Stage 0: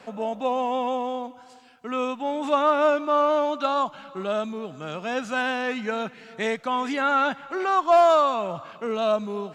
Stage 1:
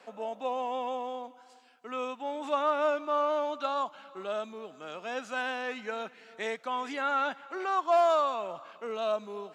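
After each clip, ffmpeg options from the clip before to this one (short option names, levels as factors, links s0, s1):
-af "highpass=320,volume=0.447"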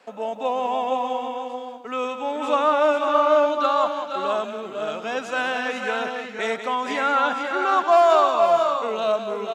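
-af "agate=range=0.447:threshold=0.00251:ratio=16:detection=peak,aecho=1:1:186|469|497|590:0.355|0.299|0.501|0.224,volume=2.51"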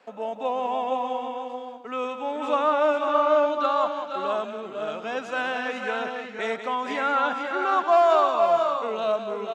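-af "highshelf=f=5800:g=-8.5,volume=0.75"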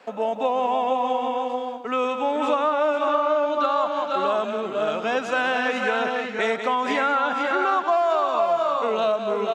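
-af "acompressor=threshold=0.0501:ratio=6,volume=2.37"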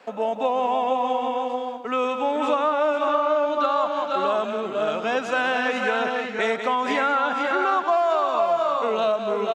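-filter_complex "[0:a]asplit=2[s0][s1];[s1]adelay=210,highpass=300,lowpass=3400,asoftclip=type=hard:threshold=0.112,volume=0.0708[s2];[s0][s2]amix=inputs=2:normalize=0"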